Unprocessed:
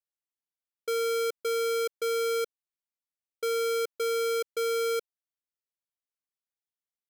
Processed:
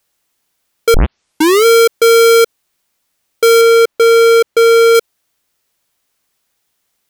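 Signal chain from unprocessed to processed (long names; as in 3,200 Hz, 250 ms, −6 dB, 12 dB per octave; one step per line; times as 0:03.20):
0:00.94: tape start 0.71 s
0:03.61–0:04.95: high-shelf EQ 4,300 Hz −8 dB
boost into a limiter +33.5 dB
level −5.5 dB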